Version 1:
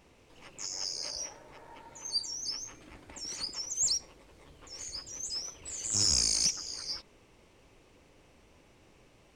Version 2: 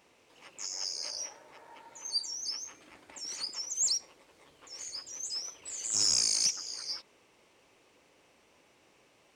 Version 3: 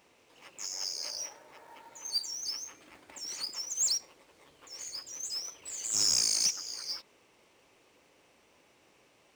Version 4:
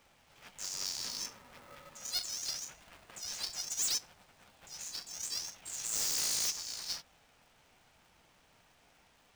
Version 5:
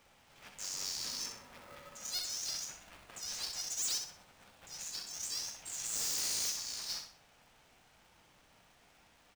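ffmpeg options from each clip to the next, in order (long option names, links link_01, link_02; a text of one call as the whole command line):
ffmpeg -i in.wav -af "highpass=frequency=480:poles=1" out.wav
ffmpeg -i in.wav -af "acrusher=bits=4:mode=log:mix=0:aa=0.000001" out.wav
ffmpeg -i in.wav -af "flanger=delay=3.5:depth=9.6:regen=-47:speed=0.73:shape=triangular,aeval=exprs='0.0316*(abs(mod(val(0)/0.0316+3,4)-2)-1)':channel_layout=same,aeval=exprs='val(0)*sgn(sin(2*PI*360*n/s))':channel_layout=same,volume=2.5dB" out.wav
ffmpeg -i in.wav -filter_complex "[0:a]asoftclip=type=tanh:threshold=-32dB,asplit=2[link_01][link_02];[link_02]aecho=0:1:63|126|189|252:0.473|0.161|0.0547|0.0186[link_03];[link_01][link_03]amix=inputs=2:normalize=0" out.wav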